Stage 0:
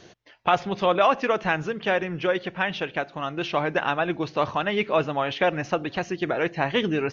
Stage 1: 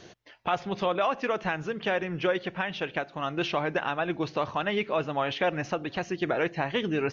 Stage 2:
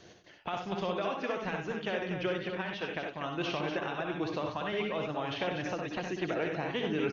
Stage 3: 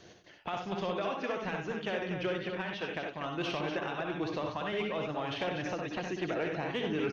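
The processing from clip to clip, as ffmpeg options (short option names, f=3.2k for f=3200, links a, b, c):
-af "alimiter=limit=-16dB:level=0:latency=1:release=416"
-filter_complex "[0:a]acrossover=split=470|3000[a][b][c];[b]acompressor=threshold=-30dB:ratio=6[d];[a][d][c]amix=inputs=3:normalize=0,asplit=2[e][f];[f]aecho=0:1:61|71|94|188|242:0.473|0.376|0.398|0.15|0.447[g];[e][g]amix=inputs=2:normalize=0,volume=-5.5dB"
-af "asoftclip=type=tanh:threshold=-22dB"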